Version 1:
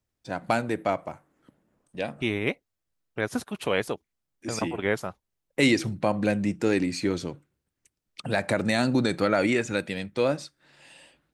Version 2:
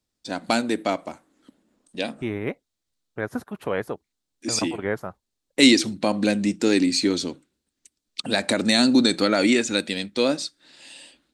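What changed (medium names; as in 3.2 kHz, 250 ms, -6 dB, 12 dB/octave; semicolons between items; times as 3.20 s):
first voice: add graphic EQ 125/250/4000/8000 Hz -12/+10/+11/+9 dB; second voice: add high-order bell 4.8 kHz -10.5 dB 2.4 oct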